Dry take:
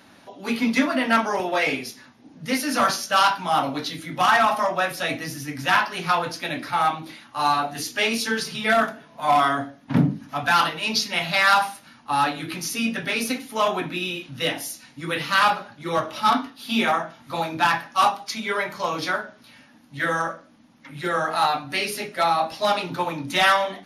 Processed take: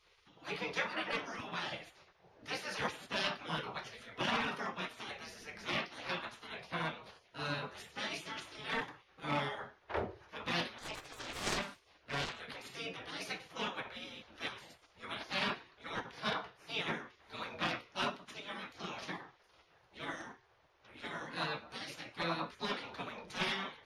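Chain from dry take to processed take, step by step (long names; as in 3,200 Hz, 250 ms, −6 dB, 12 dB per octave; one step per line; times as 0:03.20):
0:10.78–0:12.40: phase distortion by the signal itself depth 0.42 ms
gate on every frequency bin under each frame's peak −15 dB weak
head-to-tape spacing loss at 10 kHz 20 dB
level −3 dB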